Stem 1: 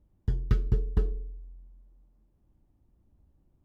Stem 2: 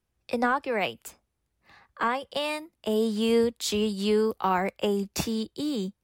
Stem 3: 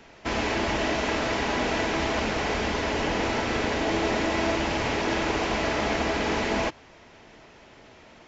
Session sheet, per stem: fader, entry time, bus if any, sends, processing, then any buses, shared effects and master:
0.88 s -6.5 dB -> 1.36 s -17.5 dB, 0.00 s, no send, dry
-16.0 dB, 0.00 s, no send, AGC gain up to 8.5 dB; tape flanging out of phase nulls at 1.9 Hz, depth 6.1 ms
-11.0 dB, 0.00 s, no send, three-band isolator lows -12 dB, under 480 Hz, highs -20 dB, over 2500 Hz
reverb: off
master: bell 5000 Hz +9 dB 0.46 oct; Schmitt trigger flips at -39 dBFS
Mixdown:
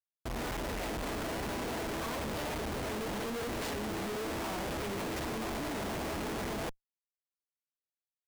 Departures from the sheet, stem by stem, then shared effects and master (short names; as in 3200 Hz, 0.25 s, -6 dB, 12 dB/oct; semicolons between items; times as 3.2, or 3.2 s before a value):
stem 1 -6.5 dB -> -14.0 dB; stem 3: missing three-band isolator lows -12 dB, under 480 Hz, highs -20 dB, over 2500 Hz; master: missing bell 5000 Hz +9 dB 0.46 oct